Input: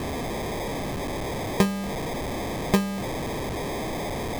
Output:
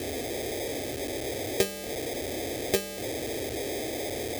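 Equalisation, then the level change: high-pass 87 Hz 12 dB/octave; treble shelf 6.5 kHz +5.5 dB; static phaser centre 430 Hz, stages 4; 0.0 dB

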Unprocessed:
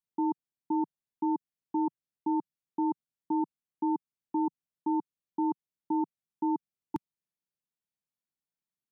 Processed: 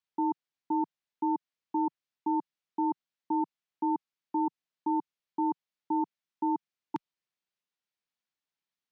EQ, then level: distance through air 180 m; tilt EQ +3 dB/octave; +4.0 dB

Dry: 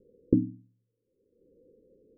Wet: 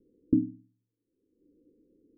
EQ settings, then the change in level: bass shelf 150 Hz +8 dB; dynamic bell 360 Hz, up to -7 dB, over -41 dBFS, Q 2.9; cascade formant filter u; +3.5 dB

